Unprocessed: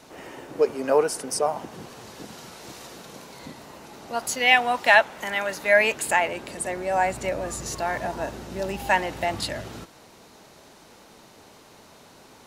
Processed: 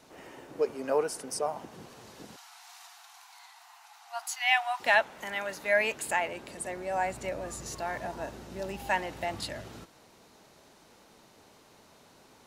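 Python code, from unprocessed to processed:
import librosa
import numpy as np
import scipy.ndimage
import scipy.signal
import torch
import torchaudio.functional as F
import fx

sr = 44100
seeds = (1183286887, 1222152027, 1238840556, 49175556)

y = fx.brickwall_highpass(x, sr, low_hz=680.0, at=(2.36, 4.8))
y = y * librosa.db_to_amplitude(-7.5)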